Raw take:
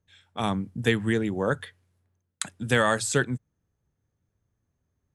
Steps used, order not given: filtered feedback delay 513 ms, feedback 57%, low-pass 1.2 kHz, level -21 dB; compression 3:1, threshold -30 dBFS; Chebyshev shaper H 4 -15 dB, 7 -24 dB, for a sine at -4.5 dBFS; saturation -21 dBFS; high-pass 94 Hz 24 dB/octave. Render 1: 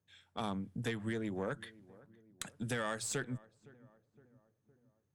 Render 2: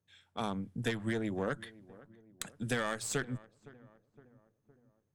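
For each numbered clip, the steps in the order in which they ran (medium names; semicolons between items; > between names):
compression > saturation > high-pass > Chebyshev shaper > filtered feedback delay; high-pass > Chebyshev shaper > compression > filtered feedback delay > saturation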